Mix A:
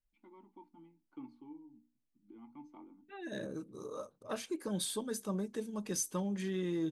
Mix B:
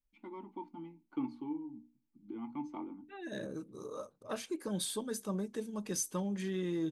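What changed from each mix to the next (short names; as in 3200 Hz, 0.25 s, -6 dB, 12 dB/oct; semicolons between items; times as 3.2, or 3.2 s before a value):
first voice +11.5 dB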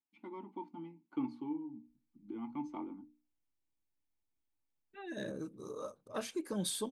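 second voice: entry +1.85 s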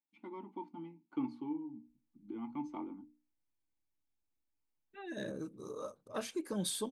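none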